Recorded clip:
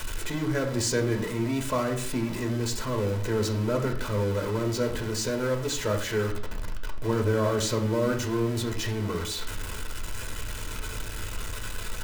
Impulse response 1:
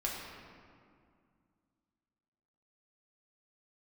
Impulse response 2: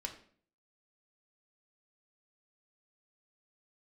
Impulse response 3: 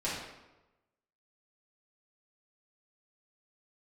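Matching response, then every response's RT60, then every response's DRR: 2; 2.2, 0.50, 1.0 s; -4.0, 2.0, -9.5 dB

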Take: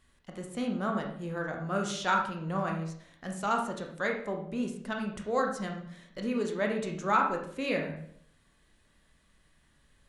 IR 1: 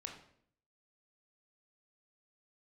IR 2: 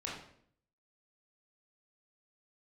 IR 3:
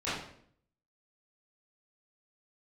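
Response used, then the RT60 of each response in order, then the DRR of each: 1; 0.60, 0.60, 0.60 s; 2.0, -5.0, -14.0 dB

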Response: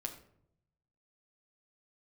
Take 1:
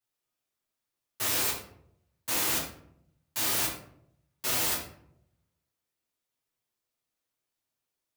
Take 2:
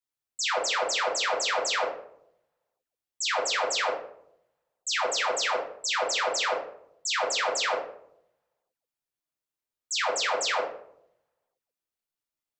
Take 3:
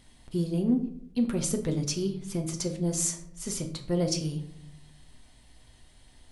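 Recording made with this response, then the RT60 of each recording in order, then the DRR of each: 3; 0.70, 0.70, 0.70 s; -8.5, -4.0, 3.5 dB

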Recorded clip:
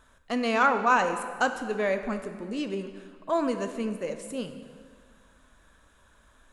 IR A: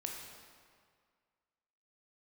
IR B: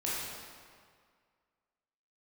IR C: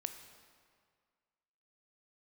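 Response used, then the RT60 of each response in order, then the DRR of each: C; 2.0, 2.0, 1.9 s; 0.0, -8.0, 7.5 dB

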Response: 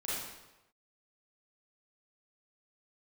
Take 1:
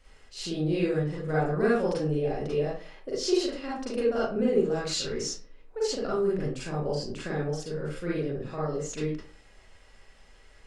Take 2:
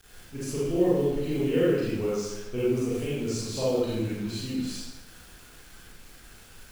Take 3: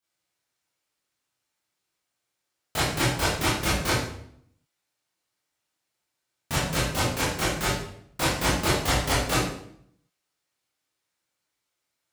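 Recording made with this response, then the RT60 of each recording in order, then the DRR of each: 2; 0.45, 1.0, 0.65 s; -8.0, -9.0, -11.0 dB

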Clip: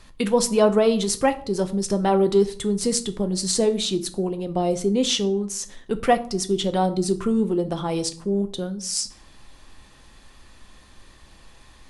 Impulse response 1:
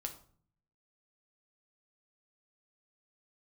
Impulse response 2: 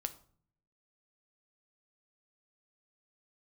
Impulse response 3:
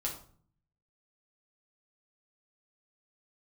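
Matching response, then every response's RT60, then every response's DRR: 2; 0.50, 0.50, 0.50 s; 3.5, 8.5, -3.0 dB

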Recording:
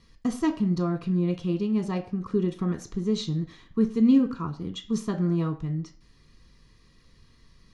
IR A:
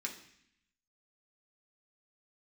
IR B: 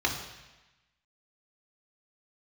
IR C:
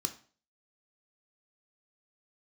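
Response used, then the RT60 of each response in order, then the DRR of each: C; 0.65, 1.1, 0.40 s; -1.0, -0.5, 7.0 dB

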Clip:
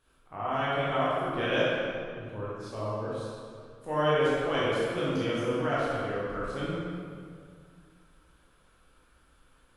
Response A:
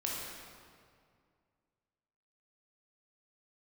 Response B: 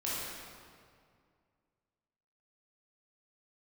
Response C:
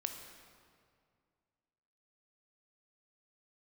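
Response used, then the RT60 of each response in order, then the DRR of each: B; 2.2, 2.2, 2.2 s; -4.0, -8.5, 4.5 dB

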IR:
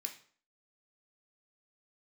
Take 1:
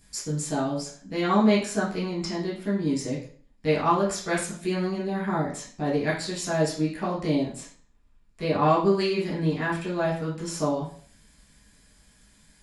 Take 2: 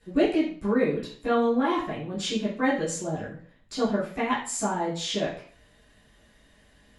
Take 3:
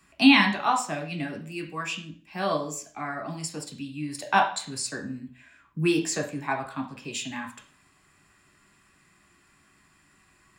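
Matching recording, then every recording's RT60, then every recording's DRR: 3; 0.50, 0.50, 0.50 s; -6.5, -10.5, 3.0 dB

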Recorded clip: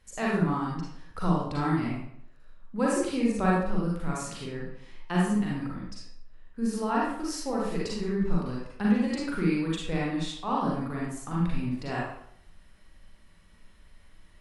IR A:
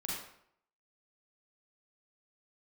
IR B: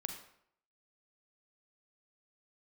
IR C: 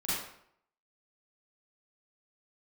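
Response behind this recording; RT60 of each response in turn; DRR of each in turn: A; 0.70, 0.70, 0.70 s; -5.5, 4.5, -11.5 dB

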